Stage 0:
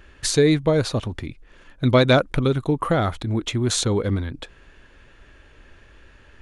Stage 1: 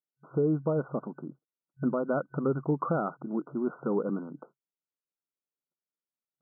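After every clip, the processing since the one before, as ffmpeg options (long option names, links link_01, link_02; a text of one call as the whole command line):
ffmpeg -i in.wav -af "agate=range=-45dB:threshold=-39dB:ratio=16:detection=peak,afftfilt=real='re*between(b*sr/4096,130,1500)':imag='im*between(b*sr/4096,130,1500)':win_size=4096:overlap=0.75,alimiter=limit=-12.5dB:level=0:latency=1:release=368,volume=-5.5dB" out.wav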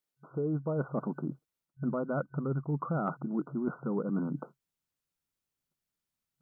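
ffmpeg -i in.wav -af "asubboost=boost=4:cutoff=190,areverse,acompressor=threshold=-36dB:ratio=6,areverse,volume=6.5dB" out.wav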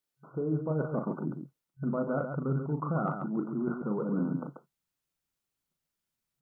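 ffmpeg -i in.wav -af "aecho=1:1:37.9|137:0.501|0.447" out.wav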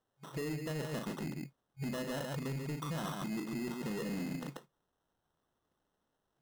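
ffmpeg -i in.wav -af "acompressor=threshold=-36dB:ratio=6,acrusher=samples=19:mix=1:aa=0.000001,asoftclip=type=tanh:threshold=-36dB,volume=3.5dB" out.wav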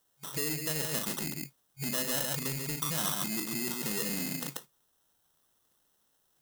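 ffmpeg -i in.wav -af "crystalizer=i=6.5:c=0" out.wav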